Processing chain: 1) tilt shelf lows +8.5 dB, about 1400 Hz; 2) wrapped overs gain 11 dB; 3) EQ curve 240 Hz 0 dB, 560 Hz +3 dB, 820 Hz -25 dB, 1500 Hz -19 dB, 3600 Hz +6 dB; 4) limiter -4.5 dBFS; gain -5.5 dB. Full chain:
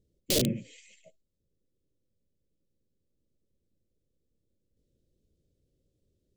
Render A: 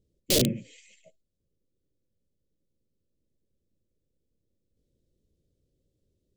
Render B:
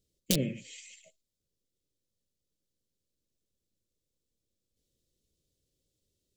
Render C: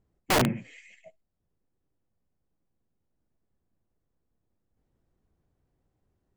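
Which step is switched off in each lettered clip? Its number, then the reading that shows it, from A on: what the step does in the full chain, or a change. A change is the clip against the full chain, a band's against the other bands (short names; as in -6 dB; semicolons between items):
4, crest factor change +3.0 dB; 1, 500 Hz band -3.0 dB; 3, 1 kHz band +20.5 dB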